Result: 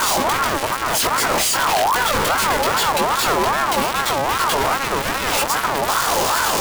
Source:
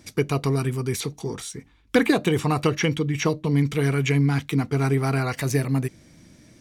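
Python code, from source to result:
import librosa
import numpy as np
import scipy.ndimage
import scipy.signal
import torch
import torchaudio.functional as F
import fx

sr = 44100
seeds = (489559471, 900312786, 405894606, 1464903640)

y = np.sign(x) * np.sqrt(np.mean(np.square(x)))
y = fx.doubler(y, sr, ms=19.0, db=-3.0)
y = fx.ring_lfo(y, sr, carrier_hz=960.0, swing_pct=30, hz=2.5)
y = y * 10.0 ** (6.5 / 20.0)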